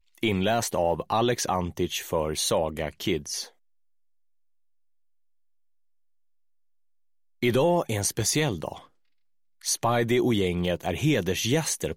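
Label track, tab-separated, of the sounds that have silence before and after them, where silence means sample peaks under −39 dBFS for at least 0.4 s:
7.430000	8.790000	sound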